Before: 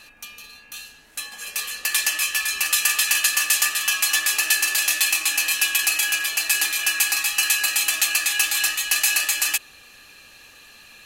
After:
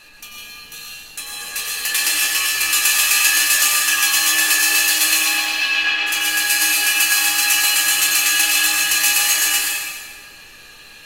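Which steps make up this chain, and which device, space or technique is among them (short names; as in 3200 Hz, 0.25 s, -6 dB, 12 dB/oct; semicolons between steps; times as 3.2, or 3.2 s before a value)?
5.18–6.06 LPF 5700 Hz -> 3400 Hz 24 dB/oct; stairwell (reverb RT60 1.7 s, pre-delay 87 ms, DRR -2 dB); shoebox room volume 39 m³, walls mixed, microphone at 0.46 m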